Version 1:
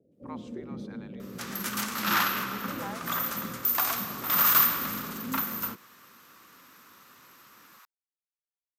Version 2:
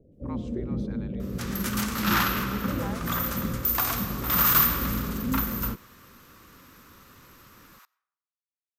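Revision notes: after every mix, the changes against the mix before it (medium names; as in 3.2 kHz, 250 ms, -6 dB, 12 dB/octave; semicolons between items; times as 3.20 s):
first sound +6.0 dB; second sound: send on; master: remove high-pass 180 Hz 12 dB/octave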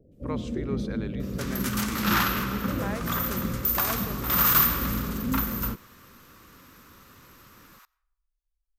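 speech: remove ladder high-pass 710 Hz, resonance 60%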